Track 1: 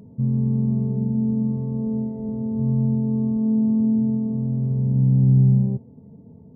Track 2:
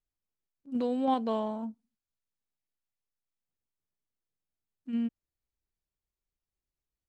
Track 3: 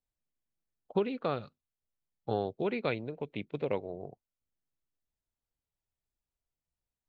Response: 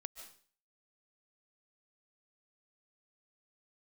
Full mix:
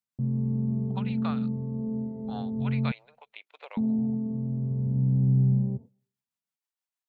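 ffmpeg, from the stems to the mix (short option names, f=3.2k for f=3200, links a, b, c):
-filter_complex "[0:a]highpass=f=64:w=0.5412,highpass=f=64:w=1.3066,agate=range=-55dB:threshold=-34dB:ratio=16:detection=peak,volume=-7dB,asplit=3[a][b][c];[a]atrim=end=2.92,asetpts=PTS-STARTPTS,afade=t=out:st=2.916:d=0.004:c=hsin[d];[b]atrim=start=2.92:end=3.77,asetpts=PTS-STARTPTS,volume=0[e];[c]atrim=start=3.77,asetpts=PTS-STARTPTS,afade=t=in:d=0.004:c=hsin[f];[d][e][f]concat=n=3:v=0:a=1,asplit=2[g][h];[h]volume=-22dB[i];[2:a]highpass=f=800:w=0.5412,highpass=f=800:w=1.3066,tremolo=f=6.3:d=0.49,volume=2dB[j];[3:a]atrim=start_sample=2205[k];[i][k]afir=irnorm=-1:irlink=0[l];[g][j][l]amix=inputs=3:normalize=0"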